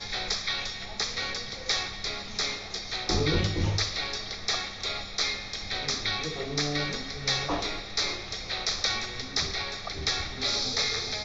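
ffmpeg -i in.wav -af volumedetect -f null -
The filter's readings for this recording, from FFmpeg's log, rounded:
mean_volume: -30.9 dB
max_volume: -11.6 dB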